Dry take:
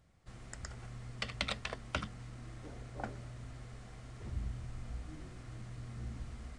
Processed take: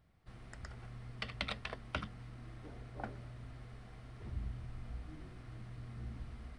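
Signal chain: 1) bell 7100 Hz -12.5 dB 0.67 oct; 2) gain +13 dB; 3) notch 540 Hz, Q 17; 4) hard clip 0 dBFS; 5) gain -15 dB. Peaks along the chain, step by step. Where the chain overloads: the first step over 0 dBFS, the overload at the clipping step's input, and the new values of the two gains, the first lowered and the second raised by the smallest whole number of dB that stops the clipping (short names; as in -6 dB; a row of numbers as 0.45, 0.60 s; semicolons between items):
-16.0, -3.0, -3.0, -3.0, -18.0 dBFS; no overload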